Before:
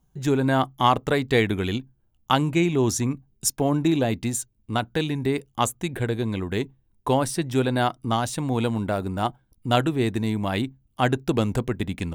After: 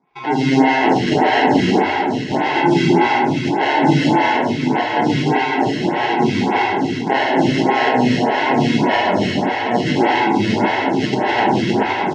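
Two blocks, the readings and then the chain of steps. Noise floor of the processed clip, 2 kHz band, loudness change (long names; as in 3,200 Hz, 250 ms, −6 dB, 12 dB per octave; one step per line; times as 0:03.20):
−22 dBFS, +12.5 dB, +8.5 dB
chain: in parallel at −1 dB: compressor whose output falls as the input rises −27 dBFS
on the sum: decimation without filtering 37×
loudspeaker in its box 240–4,800 Hz, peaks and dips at 510 Hz −9 dB, 840 Hz +6 dB, 1,400 Hz −8 dB, 2,200 Hz +6 dB, 4,200 Hz −5 dB
on a send: single-tap delay 775 ms −8 dB
on the sum: reverb whose tail is shaped and stops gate 460 ms flat, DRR −5 dB
phaser with staggered stages 1.7 Hz
level +4 dB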